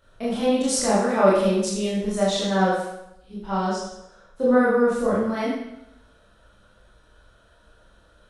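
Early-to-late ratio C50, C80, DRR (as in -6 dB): 0.5 dB, 4.0 dB, -8.0 dB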